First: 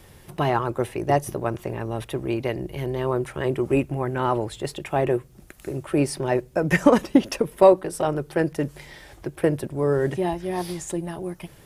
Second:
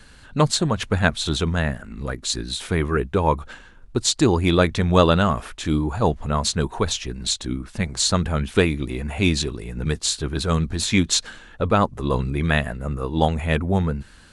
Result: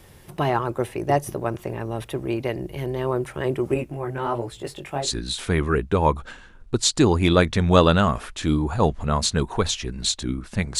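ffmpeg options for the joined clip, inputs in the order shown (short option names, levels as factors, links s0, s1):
-filter_complex "[0:a]asettb=1/sr,asplit=3[s0][s1][s2];[s0]atrim=end=3.744[s3];[s1]atrim=start=3.74:end=5.11,asetpts=PTS-STARTPTS,afade=t=in:d=0.004:c=qsin,afade=t=out:st=1.366:d=0.004:c=qsin,flanger=delay=16:depth=6:speed=1.3[s4];[s2]atrim=start=5.106[s5];[s3][s4]acrossfade=d=0.004:c1=hsin:c2=qsin[s6];[s6][s5]acrossfade=d=0.004:c1=qsin:c2=hsin,apad=whole_dur=10.79,atrim=end=10.79,atrim=end=5.11,asetpts=PTS-STARTPTS[s7];[1:a]atrim=start=2.17:end=8.01,asetpts=PTS-STARTPTS[s8];[s7][s8]acrossfade=d=0.16:c1=tri:c2=tri"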